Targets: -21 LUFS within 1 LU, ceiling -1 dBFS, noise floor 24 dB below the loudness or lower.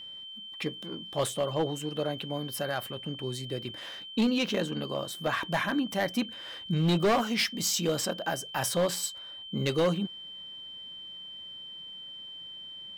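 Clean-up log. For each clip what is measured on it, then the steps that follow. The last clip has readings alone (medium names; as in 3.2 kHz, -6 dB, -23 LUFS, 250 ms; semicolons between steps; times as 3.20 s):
clipped samples 0.9%; clipping level -20.5 dBFS; steady tone 3.1 kHz; tone level -41 dBFS; loudness -31.5 LUFS; peak level -20.5 dBFS; loudness target -21.0 LUFS
-> clip repair -20.5 dBFS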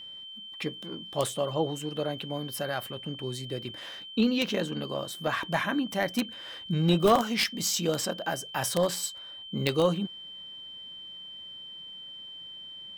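clipped samples 0.0%; steady tone 3.1 kHz; tone level -41 dBFS
-> band-stop 3.1 kHz, Q 30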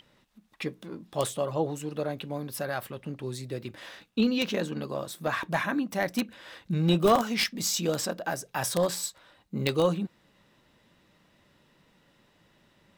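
steady tone not found; loudness -29.5 LUFS; peak level -11.0 dBFS; loudness target -21.0 LUFS
-> trim +8.5 dB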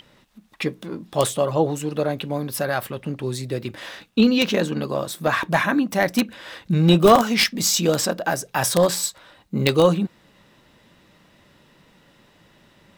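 loudness -21.0 LUFS; peak level -2.5 dBFS; noise floor -57 dBFS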